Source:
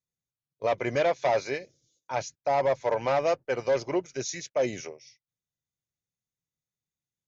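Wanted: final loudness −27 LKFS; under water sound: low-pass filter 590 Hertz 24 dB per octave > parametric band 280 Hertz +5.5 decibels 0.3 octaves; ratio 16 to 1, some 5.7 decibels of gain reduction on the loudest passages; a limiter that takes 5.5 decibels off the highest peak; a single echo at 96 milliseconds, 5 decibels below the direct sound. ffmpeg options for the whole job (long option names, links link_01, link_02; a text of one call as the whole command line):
ffmpeg -i in.wav -af "acompressor=threshold=-26dB:ratio=16,alimiter=level_in=0.5dB:limit=-24dB:level=0:latency=1,volume=-0.5dB,lowpass=frequency=590:width=0.5412,lowpass=frequency=590:width=1.3066,equalizer=frequency=280:width_type=o:width=0.3:gain=5.5,aecho=1:1:96:0.562,volume=9dB" out.wav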